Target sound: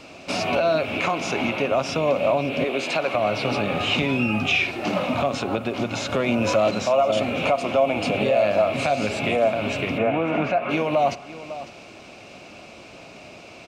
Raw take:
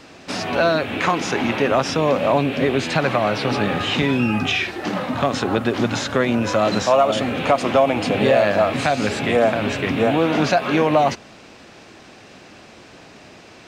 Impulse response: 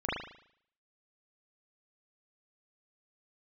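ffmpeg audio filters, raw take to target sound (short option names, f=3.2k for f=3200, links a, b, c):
-filter_complex "[0:a]asettb=1/sr,asplit=3[a][b][c];[a]atrim=end=2.644[d];[b]atrim=start=2.64:end=3.15,asetpts=PTS-STARTPTS,afade=t=in:d=0.004:c=qsin,afade=t=out:st=0.506:d=0.004:c=qsin,highpass=300[e];[c]atrim=start=3.146[f];[d][e]acrossfade=d=0.004:c1=hsin:c2=qsin[g];[g][f]acrossfade=d=0.004:c1=qsin:c2=hsin,asettb=1/sr,asplit=3[h][i][j];[h]atrim=end=6.124[k];[i]atrim=start=6.12:end=6.71,asetpts=PTS-STARTPTS,afade=t=in:d=0.004:c=qsin,afade=t=out:st=0.586:d=0.004:c=qsin,acontrast=58[l];[j]atrim=start=6.706[m];[k][l]acrossfade=d=0.004:c1=hsin:c2=qsin[n];[n][m]acrossfade=d=0.004:c1=qsin:c2=hsin,asplit=3[o][p][q];[o]afade=t=out:st=9.97:d=0.02[r];[p]highshelf=f=3.1k:t=q:w=1.5:g=-13,afade=t=in:st=9.97:d=0.02,afade=t=out:st=10.69:d=0.02[s];[q]afade=t=in:st=10.69:d=0.02[t];[r][s][t]amix=inputs=3:normalize=0,aecho=1:1:552:0.0944,asplit=2[u][v];[1:a]atrim=start_sample=2205[w];[v][w]afir=irnorm=-1:irlink=0,volume=-24.5dB[x];[u][x]amix=inputs=2:normalize=0,alimiter=limit=-12.5dB:level=0:latency=1:release=398,superequalizer=8b=1.78:11b=0.501:12b=1.78,volume=-1.5dB"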